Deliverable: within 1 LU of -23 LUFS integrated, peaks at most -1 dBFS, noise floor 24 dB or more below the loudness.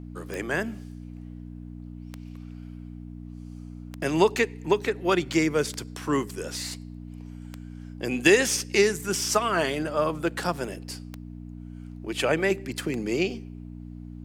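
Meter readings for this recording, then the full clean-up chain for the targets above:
clicks found 8; hum 60 Hz; highest harmonic 300 Hz; hum level -38 dBFS; loudness -26.0 LUFS; peak level -5.5 dBFS; loudness target -23.0 LUFS
-> de-click; de-hum 60 Hz, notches 5; trim +3 dB

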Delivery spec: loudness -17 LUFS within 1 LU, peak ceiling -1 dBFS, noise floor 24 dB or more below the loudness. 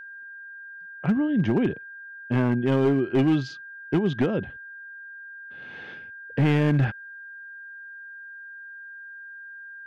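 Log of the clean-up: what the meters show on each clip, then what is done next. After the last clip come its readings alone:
clipped samples 1.5%; clipping level -15.5 dBFS; steady tone 1.6 kHz; tone level -39 dBFS; loudness -24.0 LUFS; peak level -15.5 dBFS; loudness target -17.0 LUFS
-> clip repair -15.5 dBFS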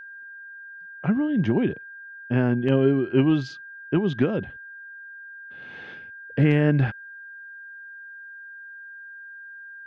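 clipped samples 0.0%; steady tone 1.6 kHz; tone level -39 dBFS
-> band-stop 1.6 kHz, Q 30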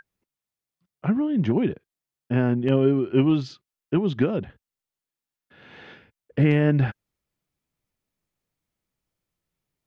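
steady tone not found; loudness -23.0 LUFS; peak level -7.5 dBFS; loudness target -17.0 LUFS
-> trim +6 dB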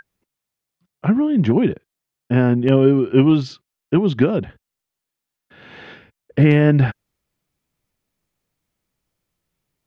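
loudness -17.0 LUFS; peak level -1.5 dBFS; noise floor -84 dBFS

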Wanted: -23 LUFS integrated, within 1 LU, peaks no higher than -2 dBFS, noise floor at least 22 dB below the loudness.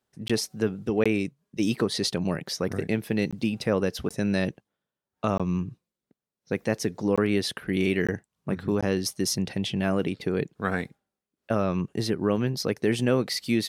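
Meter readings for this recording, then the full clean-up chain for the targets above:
dropouts 8; longest dropout 16 ms; loudness -27.5 LUFS; peak level -9.5 dBFS; loudness target -23.0 LUFS
-> interpolate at 0.28/1.04/3.31/4.09/5.38/7.16/8.07/8.81 s, 16 ms; trim +4.5 dB

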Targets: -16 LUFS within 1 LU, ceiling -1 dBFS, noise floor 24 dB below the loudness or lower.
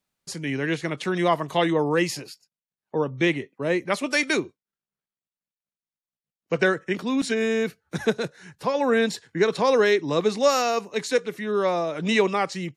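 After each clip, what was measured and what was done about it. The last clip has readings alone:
loudness -24.0 LUFS; peak level -7.5 dBFS; loudness target -16.0 LUFS
-> trim +8 dB; peak limiter -1 dBFS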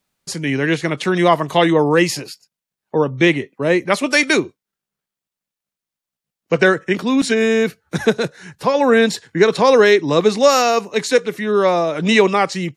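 loudness -16.0 LUFS; peak level -1.0 dBFS; noise floor -87 dBFS

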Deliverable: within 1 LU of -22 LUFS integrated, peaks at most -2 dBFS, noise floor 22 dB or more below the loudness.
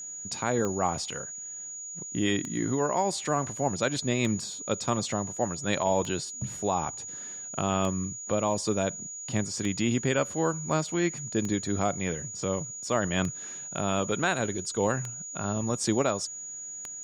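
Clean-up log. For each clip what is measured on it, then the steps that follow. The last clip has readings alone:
clicks found 10; steady tone 6.8 kHz; tone level -37 dBFS; loudness -29.5 LUFS; peak level -12.0 dBFS; loudness target -22.0 LUFS
-> de-click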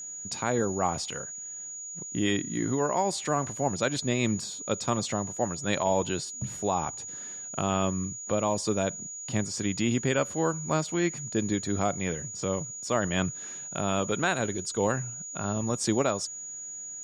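clicks found 0; steady tone 6.8 kHz; tone level -37 dBFS
-> band-stop 6.8 kHz, Q 30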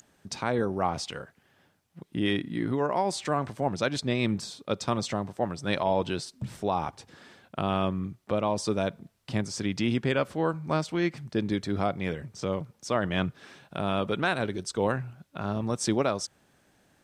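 steady tone not found; loudness -29.5 LUFS; peak level -12.5 dBFS; loudness target -22.0 LUFS
-> trim +7.5 dB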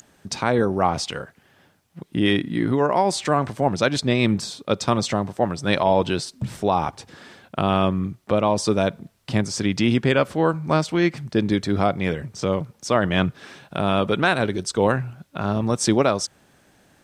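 loudness -22.0 LUFS; peak level -5.0 dBFS; noise floor -60 dBFS

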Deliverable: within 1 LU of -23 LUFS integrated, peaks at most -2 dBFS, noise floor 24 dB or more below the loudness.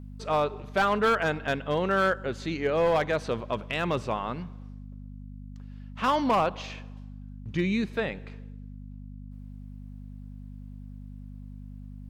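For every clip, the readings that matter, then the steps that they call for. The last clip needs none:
clipped samples 0.7%; clipping level -18.0 dBFS; hum 50 Hz; highest harmonic 250 Hz; hum level -40 dBFS; loudness -27.5 LUFS; peak level -18.0 dBFS; loudness target -23.0 LUFS
-> clip repair -18 dBFS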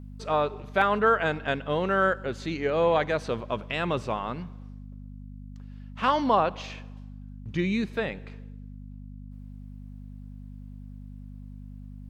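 clipped samples 0.0%; hum 50 Hz; highest harmonic 250 Hz; hum level -39 dBFS
-> de-hum 50 Hz, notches 5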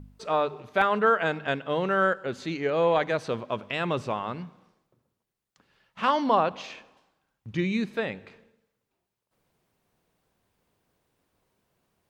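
hum not found; loudness -26.5 LUFS; peak level -9.0 dBFS; loudness target -23.0 LUFS
-> trim +3.5 dB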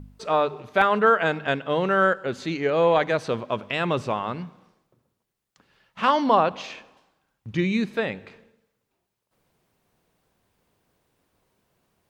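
loudness -23.0 LUFS; peak level -5.5 dBFS; noise floor -80 dBFS

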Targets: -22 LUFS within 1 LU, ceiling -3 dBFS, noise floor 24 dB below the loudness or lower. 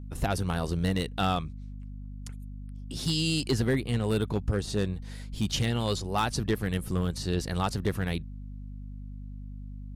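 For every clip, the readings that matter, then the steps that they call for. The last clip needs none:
clipped samples 0.7%; clipping level -19.0 dBFS; hum 50 Hz; highest harmonic 250 Hz; hum level -38 dBFS; loudness -29.5 LUFS; peak level -19.0 dBFS; loudness target -22.0 LUFS
-> clip repair -19 dBFS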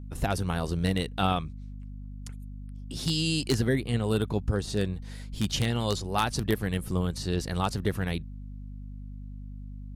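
clipped samples 0.0%; hum 50 Hz; highest harmonic 250 Hz; hum level -38 dBFS
-> hum notches 50/100/150/200/250 Hz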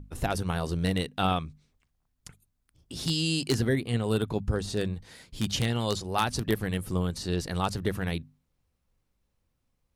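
hum not found; loudness -29.5 LUFS; peak level -9.0 dBFS; loudness target -22.0 LUFS
-> trim +7.5 dB; peak limiter -3 dBFS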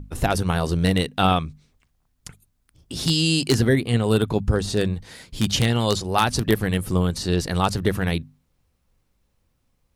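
loudness -22.0 LUFS; peak level -3.0 dBFS; noise floor -70 dBFS

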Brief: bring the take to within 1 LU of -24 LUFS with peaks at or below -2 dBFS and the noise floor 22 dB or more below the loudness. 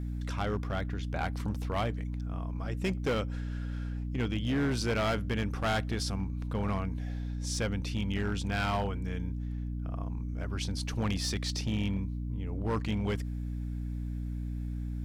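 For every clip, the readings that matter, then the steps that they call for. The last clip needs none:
clipped samples 2.1%; clipping level -25.0 dBFS; hum 60 Hz; highest harmonic 300 Hz; hum level -33 dBFS; loudness -33.5 LUFS; peak level -25.0 dBFS; loudness target -24.0 LUFS
-> clip repair -25 dBFS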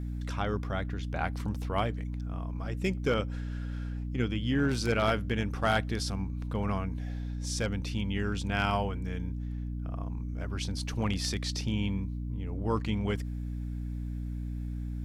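clipped samples 0.0%; hum 60 Hz; highest harmonic 300 Hz; hum level -33 dBFS
-> de-hum 60 Hz, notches 5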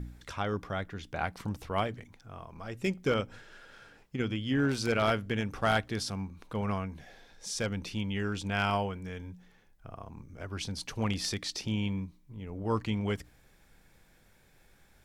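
hum not found; loudness -33.0 LUFS; peak level -15.0 dBFS; loudness target -24.0 LUFS
-> trim +9 dB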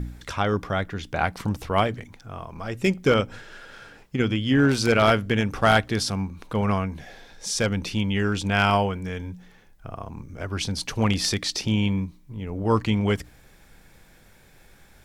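loudness -24.0 LUFS; peak level -6.0 dBFS; noise floor -54 dBFS

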